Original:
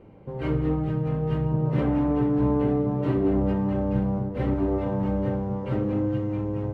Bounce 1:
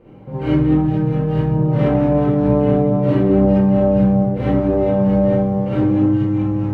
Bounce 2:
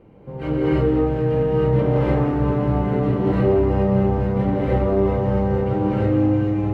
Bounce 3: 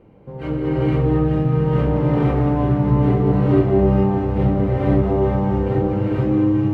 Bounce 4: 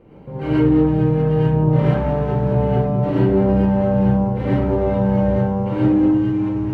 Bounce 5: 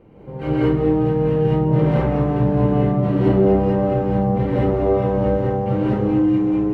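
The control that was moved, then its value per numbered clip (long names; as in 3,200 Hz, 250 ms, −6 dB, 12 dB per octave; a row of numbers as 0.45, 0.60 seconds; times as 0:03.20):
reverb whose tail is shaped and stops, gate: 90, 350, 530, 150, 230 milliseconds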